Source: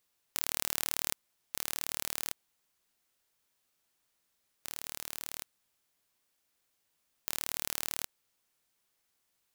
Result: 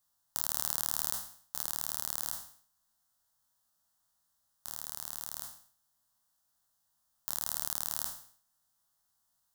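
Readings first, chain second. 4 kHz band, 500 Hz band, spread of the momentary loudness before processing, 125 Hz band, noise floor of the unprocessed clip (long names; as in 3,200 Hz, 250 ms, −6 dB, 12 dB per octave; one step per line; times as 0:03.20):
−2.5 dB, −5.0 dB, 12 LU, +1.0 dB, −78 dBFS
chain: peak hold with a decay on every bin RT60 0.53 s
phaser with its sweep stopped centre 990 Hz, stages 4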